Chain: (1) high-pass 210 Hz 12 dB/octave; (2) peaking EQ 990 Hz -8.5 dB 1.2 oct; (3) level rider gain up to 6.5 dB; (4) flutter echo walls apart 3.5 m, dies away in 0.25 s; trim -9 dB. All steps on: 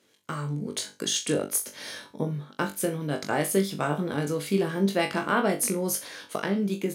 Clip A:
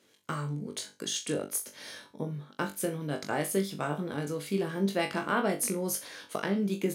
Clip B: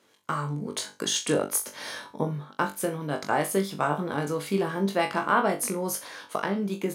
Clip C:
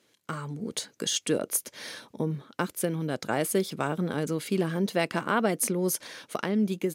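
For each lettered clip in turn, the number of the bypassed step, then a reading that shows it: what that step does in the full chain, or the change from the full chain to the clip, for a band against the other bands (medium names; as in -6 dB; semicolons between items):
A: 3, momentary loudness spread change +1 LU; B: 2, 1 kHz band +5.0 dB; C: 4, momentary loudness spread change +1 LU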